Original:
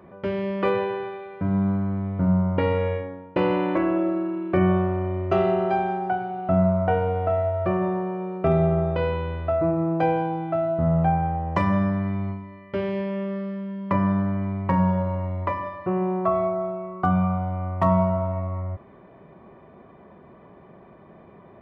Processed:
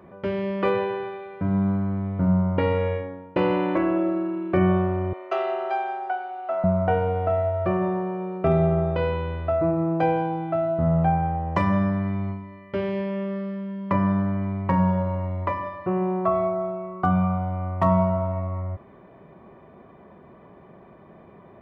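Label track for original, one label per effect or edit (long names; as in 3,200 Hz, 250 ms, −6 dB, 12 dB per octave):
5.130000	6.640000	Bessel high-pass filter 630 Hz, order 6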